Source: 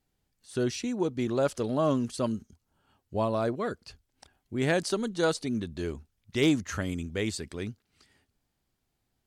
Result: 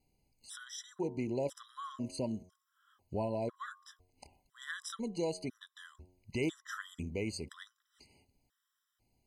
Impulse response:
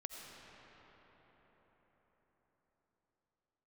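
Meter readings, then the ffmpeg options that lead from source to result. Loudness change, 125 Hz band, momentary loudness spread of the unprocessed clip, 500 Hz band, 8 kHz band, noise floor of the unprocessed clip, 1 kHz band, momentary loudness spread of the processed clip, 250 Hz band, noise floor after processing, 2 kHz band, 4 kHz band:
−9.5 dB, −10.0 dB, 11 LU, −10.0 dB, −8.0 dB, −80 dBFS, −10.0 dB, 19 LU, −10.5 dB, −84 dBFS, −9.0 dB, −10.0 dB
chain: -af "bandreject=frequency=90.91:width_type=h:width=4,bandreject=frequency=181.82:width_type=h:width=4,bandreject=frequency=272.73:width_type=h:width=4,bandreject=frequency=363.64:width_type=h:width=4,bandreject=frequency=454.55:width_type=h:width=4,bandreject=frequency=545.46:width_type=h:width=4,bandreject=frequency=636.37:width_type=h:width=4,bandreject=frequency=727.28:width_type=h:width=4,bandreject=frequency=818.19:width_type=h:width=4,bandreject=frequency=909.1:width_type=h:width=4,bandreject=frequency=1000.01:width_type=h:width=4,bandreject=frequency=1090.92:width_type=h:width=4,bandreject=frequency=1181.83:width_type=h:width=4,acompressor=threshold=-42dB:ratio=2,afftfilt=real='re*gt(sin(2*PI*1*pts/sr)*(1-2*mod(floor(b*sr/1024/1000),2)),0)':imag='im*gt(sin(2*PI*1*pts/sr)*(1-2*mod(floor(b*sr/1024/1000),2)),0)':win_size=1024:overlap=0.75,volume=2.5dB"

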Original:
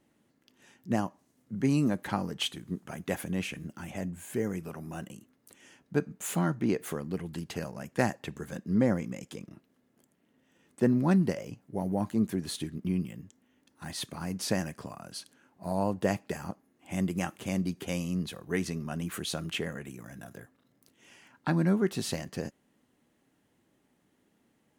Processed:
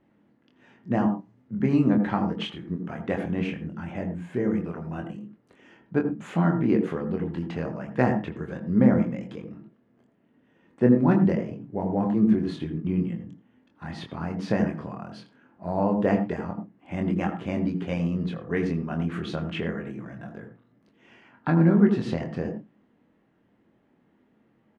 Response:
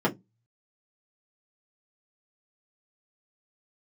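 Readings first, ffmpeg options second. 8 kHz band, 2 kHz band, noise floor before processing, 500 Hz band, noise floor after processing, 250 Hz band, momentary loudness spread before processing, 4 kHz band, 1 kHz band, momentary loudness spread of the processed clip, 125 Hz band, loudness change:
below −15 dB, +2.5 dB, −72 dBFS, +5.5 dB, −65 dBFS, +7.0 dB, 16 LU, can't be measured, +5.5 dB, 18 LU, +6.0 dB, +6.0 dB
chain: -filter_complex "[0:a]lowpass=2200,asplit=2[link_01][link_02];[link_02]adelay=24,volume=-5dB[link_03];[link_01][link_03]amix=inputs=2:normalize=0,asplit=2[link_04][link_05];[1:a]atrim=start_sample=2205,adelay=79[link_06];[link_05][link_06]afir=irnorm=-1:irlink=0,volume=-22dB[link_07];[link_04][link_07]amix=inputs=2:normalize=0,volume=3.5dB"

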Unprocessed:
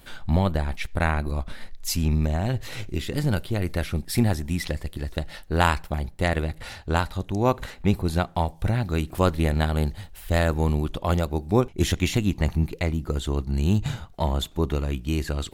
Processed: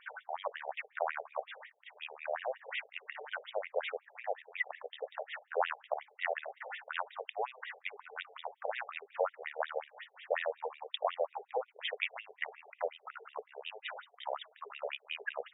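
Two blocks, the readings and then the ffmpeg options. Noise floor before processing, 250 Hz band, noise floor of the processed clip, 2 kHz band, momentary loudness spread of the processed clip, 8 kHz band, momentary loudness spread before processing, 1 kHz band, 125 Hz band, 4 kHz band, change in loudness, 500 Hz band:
−47 dBFS, below −40 dB, −70 dBFS, −7.0 dB, 10 LU, below −40 dB, 8 LU, −9.5 dB, below −40 dB, −10.5 dB, −14.0 dB, −9.5 dB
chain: -filter_complex "[0:a]acrossover=split=190[link_01][link_02];[link_02]acompressor=threshold=-28dB:ratio=5[link_03];[link_01][link_03]amix=inputs=2:normalize=0,bandreject=frequency=50:width_type=h:width=6,bandreject=frequency=100:width_type=h:width=6,bandreject=frequency=150:width_type=h:width=6,bandreject=frequency=200:width_type=h:width=6,bandreject=frequency=250:width_type=h:width=6,bandreject=frequency=300:width_type=h:width=6,bandreject=frequency=350:width_type=h:width=6,bandreject=frequency=400:width_type=h:width=6,bandreject=frequency=450:width_type=h:width=6,afftfilt=real='re*between(b*sr/1024,560*pow(2700/560,0.5+0.5*sin(2*PI*5.5*pts/sr))/1.41,560*pow(2700/560,0.5+0.5*sin(2*PI*5.5*pts/sr))*1.41)':imag='im*between(b*sr/1024,560*pow(2700/560,0.5+0.5*sin(2*PI*5.5*pts/sr))/1.41,560*pow(2700/560,0.5+0.5*sin(2*PI*5.5*pts/sr))*1.41)':win_size=1024:overlap=0.75,volume=3.5dB"

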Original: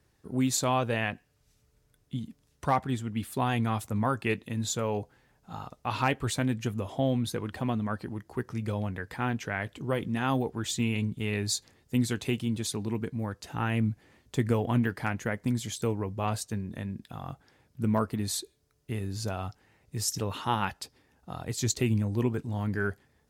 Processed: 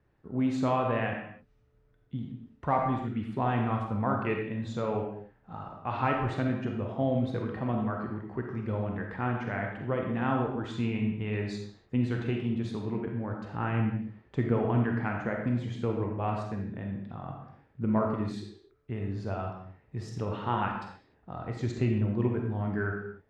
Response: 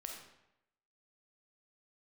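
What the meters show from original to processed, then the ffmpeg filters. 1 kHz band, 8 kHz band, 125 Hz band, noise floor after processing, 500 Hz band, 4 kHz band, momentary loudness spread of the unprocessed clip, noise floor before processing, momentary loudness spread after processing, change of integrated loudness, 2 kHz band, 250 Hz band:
+0.5 dB, below −20 dB, −0.5 dB, −66 dBFS, +1.0 dB, −11.0 dB, 11 LU, −69 dBFS, 12 LU, −0.5 dB, −2.0 dB, 0.0 dB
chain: -filter_complex "[0:a]lowpass=1900[link_01];[1:a]atrim=start_sample=2205,afade=type=out:start_time=0.36:duration=0.01,atrim=end_sample=16317[link_02];[link_01][link_02]afir=irnorm=-1:irlink=0,volume=3.5dB"

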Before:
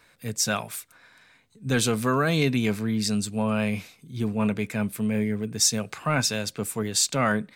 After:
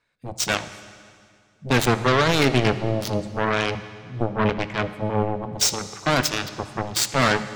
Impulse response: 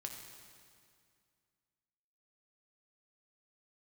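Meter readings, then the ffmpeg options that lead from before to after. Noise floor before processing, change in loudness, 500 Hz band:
−60 dBFS, +2.5 dB, +5.0 dB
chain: -filter_complex "[0:a]afwtdn=0.0178,lowpass=8400,aeval=exprs='0.316*(cos(1*acos(clip(val(0)/0.316,-1,1)))-cos(1*PI/2))+0.02*(cos(3*acos(clip(val(0)/0.316,-1,1)))-cos(3*PI/2))+0.0562*(cos(7*acos(clip(val(0)/0.316,-1,1)))-cos(7*PI/2))':channel_layout=same,aeval=exprs='0.596*sin(PI/2*3.16*val(0)/0.596)':channel_layout=same,asplit=2[link_01][link_02];[1:a]atrim=start_sample=2205,lowpass=7200[link_03];[link_02][link_03]afir=irnorm=-1:irlink=0,volume=-1dB[link_04];[link_01][link_04]amix=inputs=2:normalize=0,volume=-8dB"

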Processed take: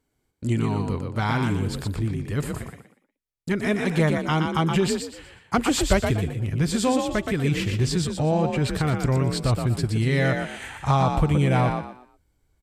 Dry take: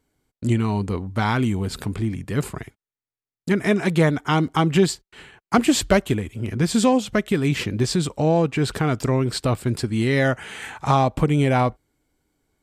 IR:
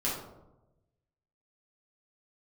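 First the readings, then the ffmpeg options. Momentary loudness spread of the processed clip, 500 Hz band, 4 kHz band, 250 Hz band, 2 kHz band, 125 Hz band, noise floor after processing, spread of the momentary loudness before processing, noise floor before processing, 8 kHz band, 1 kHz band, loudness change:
8 LU, −3.5 dB, −2.0 dB, −3.0 dB, −2.0 dB, 0.0 dB, −75 dBFS, 8 LU, below −85 dBFS, −2.0 dB, −2.5 dB, −2.5 dB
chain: -filter_complex "[0:a]asplit=5[link_01][link_02][link_03][link_04][link_05];[link_02]adelay=120,afreqshift=41,volume=-5dB[link_06];[link_03]adelay=240,afreqshift=82,volume=-15.5dB[link_07];[link_04]adelay=360,afreqshift=123,volume=-25.9dB[link_08];[link_05]adelay=480,afreqshift=164,volume=-36.4dB[link_09];[link_01][link_06][link_07][link_08][link_09]amix=inputs=5:normalize=0,asubboost=boost=4:cutoff=110,volume=-3.5dB"

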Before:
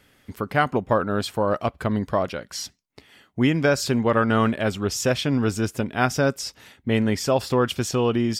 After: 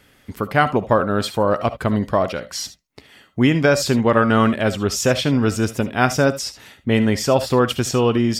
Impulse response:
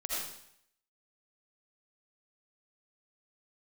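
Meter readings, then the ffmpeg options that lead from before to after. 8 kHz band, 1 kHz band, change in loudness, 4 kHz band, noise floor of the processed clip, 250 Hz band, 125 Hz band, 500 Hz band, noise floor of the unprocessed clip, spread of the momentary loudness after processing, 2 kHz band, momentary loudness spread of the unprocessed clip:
+4.5 dB, +4.5 dB, +4.5 dB, +4.5 dB, −55 dBFS, +4.5 dB, +4.0 dB, +4.5 dB, −62 dBFS, 11 LU, +4.5 dB, 12 LU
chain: -filter_complex "[0:a]asplit=2[link_01][link_02];[1:a]atrim=start_sample=2205,atrim=end_sample=3528[link_03];[link_02][link_03]afir=irnorm=-1:irlink=0,volume=-6dB[link_04];[link_01][link_04]amix=inputs=2:normalize=0,volume=1.5dB"

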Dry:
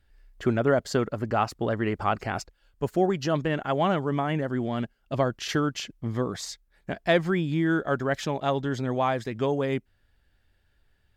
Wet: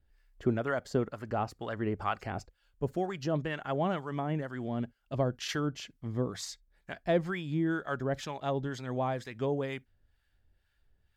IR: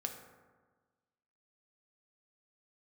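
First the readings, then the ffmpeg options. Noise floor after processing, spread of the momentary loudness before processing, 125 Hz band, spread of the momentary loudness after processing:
−74 dBFS, 9 LU, −5.5 dB, 7 LU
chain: -filter_complex "[0:a]acrossover=split=800[link_01][link_02];[link_01]aeval=exprs='val(0)*(1-0.7/2+0.7/2*cos(2*PI*2.1*n/s))':channel_layout=same[link_03];[link_02]aeval=exprs='val(0)*(1-0.7/2-0.7/2*cos(2*PI*2.1*n/s))':channel_layout=same[link_04];[link_03][link_04]amix=inputs=2:normalize=0,asplit=2[link_05][link_06];[link_06]asubboost=boost=6:cutoff=160[link_07];[1:a]atrim=start_sample=2205,atrim=end_sample=3087[link_08];[link_07][link_08]afir=irnorm=-1:irlink=0,volume=-17dB[link_09];[link_05][link_09]amix=inputs=2:normalize=0,volume=-4.5dB"

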